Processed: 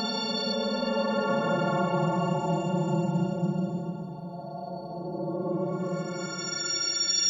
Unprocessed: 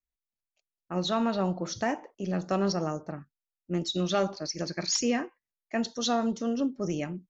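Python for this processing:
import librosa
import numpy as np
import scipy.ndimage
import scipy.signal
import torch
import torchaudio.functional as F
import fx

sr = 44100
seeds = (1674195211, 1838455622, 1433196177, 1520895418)

y = fx.freq_snap(x, sr, grid_st=4)
y = fx.paulstretch(y, sr, seeds[0], factor=19.0, window_s=0.05, from_s=1.33)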